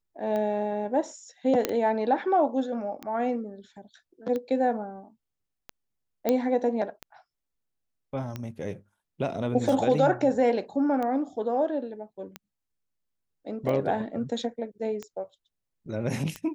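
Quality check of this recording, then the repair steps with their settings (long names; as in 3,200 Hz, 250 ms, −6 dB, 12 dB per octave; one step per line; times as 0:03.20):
scratch tick 45 rpm −20 dBFS
0:01.65: click −9 dBFS
0:06.29: click −11 dBFS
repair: click removal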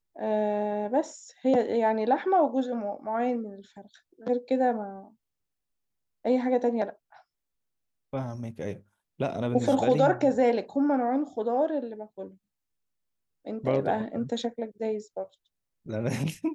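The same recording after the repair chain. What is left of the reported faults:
none of them is left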